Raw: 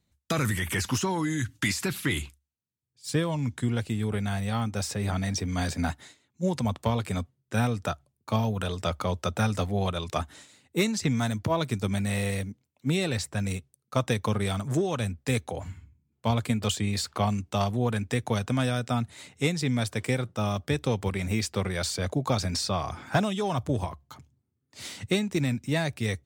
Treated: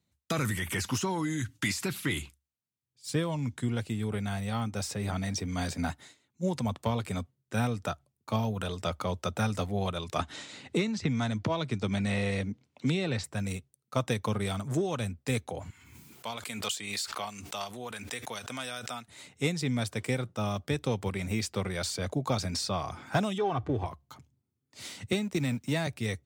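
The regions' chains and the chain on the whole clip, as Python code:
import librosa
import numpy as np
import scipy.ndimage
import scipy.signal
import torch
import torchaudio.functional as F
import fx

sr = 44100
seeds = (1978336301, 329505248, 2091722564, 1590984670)

y = fx.chain(x, sr, fx.lowpass(hz=5200.0, slope=12),
    fx.band_squash(depth_pct=100), at=(10.19, 13.24))
y = fx.chain(y, sr, fx.highpass(hz=1400.0, slope=6),
    fx.high_shelf(hz=9300.0, db=2.5),
    fx.pre_swell(db_per_s=45.0), at=(15.7, 19.08))
y = fx.chain(y, sr, fx.law_mismatch(coded='mu'),
    fx.lowpass(hz=2700.0, slope=12),
    fx.comb(ms=2.6, depth=0.5), at=(23.38, 23.86))
y = fx.chain(y, sr, fx.law_mismatch(coded='A'),
    fx.band_squash(depth_pct=70), at=(25.12, 25.87))
y = scipy.signal.sosfilt(scipy.signal.butter(2, 79.0, 'highpass', fs=sr, output='sos'), y)
y = fx.notch(y, sr, hz=1700.0, q=26.0)
y = y * 10.0 ** (-3.0 / 20.0)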